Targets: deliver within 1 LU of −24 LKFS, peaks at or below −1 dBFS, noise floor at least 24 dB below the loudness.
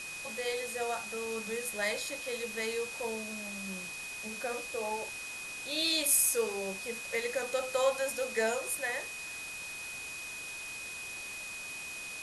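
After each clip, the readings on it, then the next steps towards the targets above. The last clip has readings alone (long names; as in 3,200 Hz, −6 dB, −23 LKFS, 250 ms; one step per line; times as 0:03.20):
interfering tone 2,500 Hz; level of the tone −41 dBFS; background noise floor −42 dBFS; target noise floor −58 dBFS; integrated loudness −33.5 LKFS; sample peak −12.5 dBFS; target loudness −24.0 LKFS
→ notch filter 2,500 Hz, Q 30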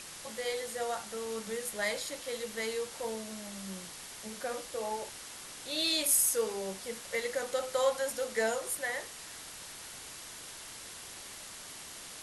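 interfering tone none found; background noise floor −47 dBFS; target noise floor −59 dBFS
→ noise reduction from a noise print 12 dB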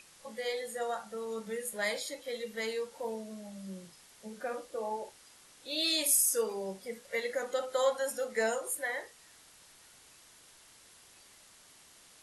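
background noise floor −59 dBFS; integrated loudness −33.5 LKFS; sample peak −13.0 dBFS; target loudness −24.0 LKFS
→ level +9.5 dB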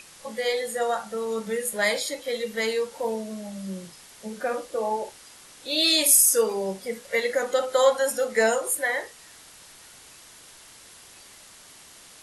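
integrated loudness −24.0 LKFS; sample peak −3.5 dBFS; background noise floor −49 dBFS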